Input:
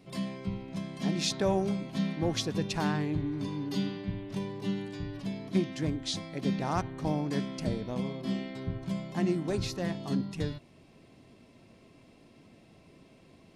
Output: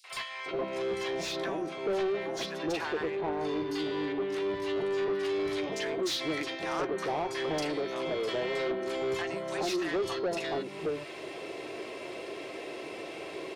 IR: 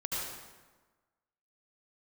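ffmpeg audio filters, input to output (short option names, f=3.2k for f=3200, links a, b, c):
-filter_complex "[0:a]acompressor=threshold=-41dB:ratio=12,lowshelf=f=290:t=q:w=3:g=-7.5,asplit=2[a][b];[b]adelay=13,volume=-12dB[c];[a][c]amix=inputs=2:normalize=0,acrossover=split=990|4800[d][e][f];[e]adelay=40[g];[d]adelay=460[h];[h][g][f]amix=inputs=3:normalize=0,asetnsamples=n=441:p=0,asendcmd='5.23 lowpass f 3900',asplit=2[i][j];[j]highpass=f=720:p=1,volume=25dB,asoftclip=type=tanh:threshold=-25.5dB[k];[i][k]amix=inputs=2:normalize=0,lowpass=f=2k:p=1,volume=-6dB,volume=4.5dB"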